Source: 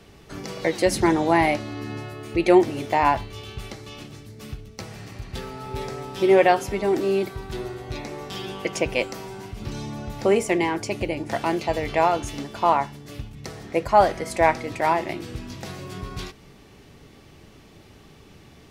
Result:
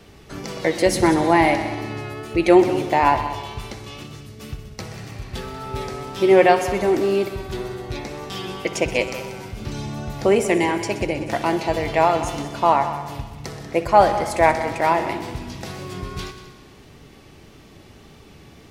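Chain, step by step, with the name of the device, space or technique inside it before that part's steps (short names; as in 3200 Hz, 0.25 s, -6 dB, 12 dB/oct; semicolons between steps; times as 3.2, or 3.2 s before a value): multi-head tape echo (multi-head echo 63 ms, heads all three, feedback 49%, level -16 dB; wow and flutter 24 cents); gain +2.5 dB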